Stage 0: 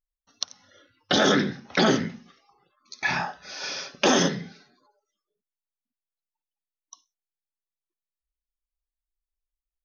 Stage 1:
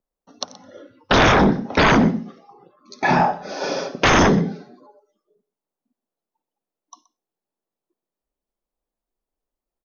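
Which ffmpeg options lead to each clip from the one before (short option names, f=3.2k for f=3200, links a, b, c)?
-filter_complex "[0:a]acrossover=split=150|850[a][b][c];[b]aeval=exprs='0.282*sin(PI/2*6.31*val(0)/0.282)':c=same[d];[a][d][c]amix=inputs=3:normalize=0,aecho=1:1:125:0.106"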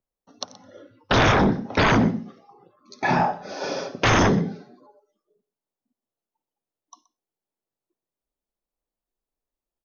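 -af "equalizer=f=110:t=o:w=0.22:g=11.5,volume=-4dB"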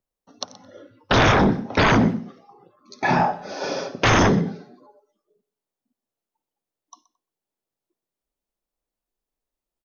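-filter_complex "[0:a]asplit=2[a][b];[b]adelay=220,highpass=300,lowpass=3.4k,asoftclip=type=hard:threshold=-17.5dB,volume=-29dB[c];[a][c]amix=inputs=2:normalize=0,volume=1.5dB"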